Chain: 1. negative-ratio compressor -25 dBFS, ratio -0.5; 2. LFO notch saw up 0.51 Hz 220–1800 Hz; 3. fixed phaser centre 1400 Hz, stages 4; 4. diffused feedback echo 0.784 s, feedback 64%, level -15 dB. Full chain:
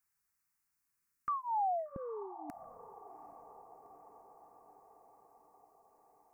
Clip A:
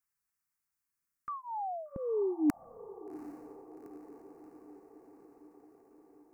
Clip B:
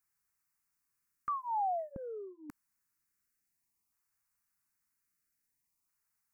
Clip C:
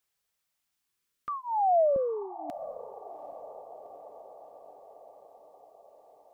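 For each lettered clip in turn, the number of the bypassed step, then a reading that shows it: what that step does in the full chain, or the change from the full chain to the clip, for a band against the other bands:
1, crest factor change +10.5 dB; 4, echo-to-direct -12.5 dB to none; 3, loudness change +9.5 LU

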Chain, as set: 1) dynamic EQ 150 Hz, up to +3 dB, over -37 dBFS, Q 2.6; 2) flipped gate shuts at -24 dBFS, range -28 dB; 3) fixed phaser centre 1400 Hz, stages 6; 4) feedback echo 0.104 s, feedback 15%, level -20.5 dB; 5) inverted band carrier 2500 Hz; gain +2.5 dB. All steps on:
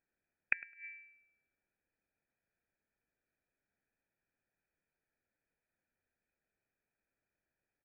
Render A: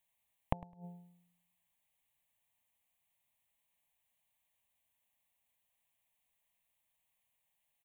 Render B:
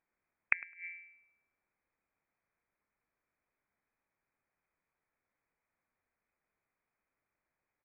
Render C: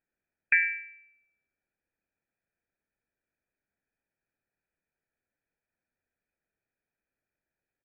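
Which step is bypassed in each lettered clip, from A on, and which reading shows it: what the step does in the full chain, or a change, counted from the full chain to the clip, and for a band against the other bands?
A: 5, momentary loudness spread change -1 LU; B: 3, 1 kHz band +5.0 dB; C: 2, momentary loudness spread change -4 LU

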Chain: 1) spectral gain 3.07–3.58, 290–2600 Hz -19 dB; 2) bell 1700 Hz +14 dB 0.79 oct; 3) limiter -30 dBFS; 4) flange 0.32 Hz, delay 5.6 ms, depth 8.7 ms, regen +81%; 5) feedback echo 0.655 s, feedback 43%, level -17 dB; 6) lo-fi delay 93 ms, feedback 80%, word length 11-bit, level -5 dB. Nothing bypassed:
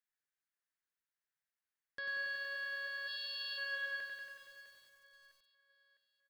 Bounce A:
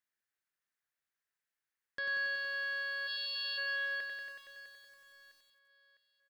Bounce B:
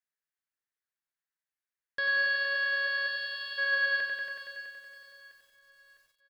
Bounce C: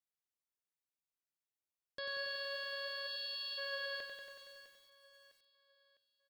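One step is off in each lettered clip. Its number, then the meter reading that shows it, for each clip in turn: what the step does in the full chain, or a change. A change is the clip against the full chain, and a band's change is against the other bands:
4, loudness change +4.5 LU; 3, mean gain reduction 9.5 dB; 2, 2 kHz band -9.0 dB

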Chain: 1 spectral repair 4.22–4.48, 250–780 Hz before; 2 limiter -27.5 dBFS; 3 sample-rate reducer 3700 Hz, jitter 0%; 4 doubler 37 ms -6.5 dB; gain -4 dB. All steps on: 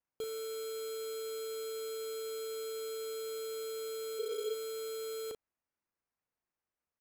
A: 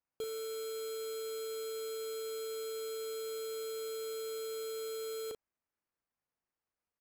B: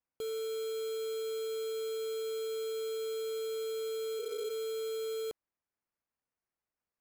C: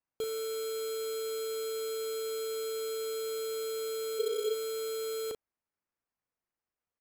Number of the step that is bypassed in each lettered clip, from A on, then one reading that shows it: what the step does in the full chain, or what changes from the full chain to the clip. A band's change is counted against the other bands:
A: 1, crest factor change -3.0 dB; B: 4, 500 Hz band +3.5 dB; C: 2, mean gain reduction 4.5 dB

